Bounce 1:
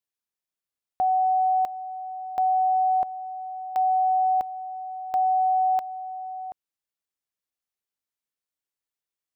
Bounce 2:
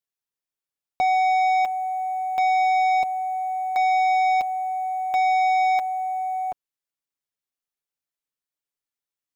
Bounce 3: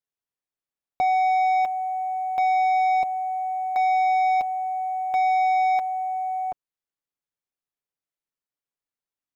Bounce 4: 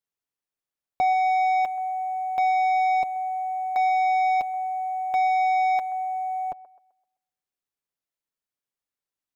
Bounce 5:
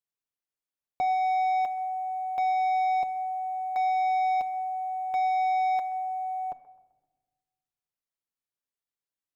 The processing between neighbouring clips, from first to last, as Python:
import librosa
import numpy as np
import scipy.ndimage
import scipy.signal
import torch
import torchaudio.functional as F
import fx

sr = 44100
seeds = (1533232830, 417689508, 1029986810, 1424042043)

y1 = fx.leveller(x, sr, passes=2)
y1 = y1 + 0.44 * np.pad(y1, (int(7.1 * sr / 1000.0), 0))[:len(y1)]
y1 = F.gain(torch.from_numpy(y1), 1.5).numpy()
y2 = fx.high_shelf(y1, sr, hz=2500.0, db=-8.0)
y3 = fx.echo_wet_bandpass(y2, sr, ms=129, feedback_pct=35, hz=900.0, wet_db=-16)
y4 = fx.room_shoebox(y3, sr, seeds[0], volume_m3=890.0, walls='mixed', distance_m=0.33)
y4 = F.gain(torch.from_numpy(y4), -5.5).numpy()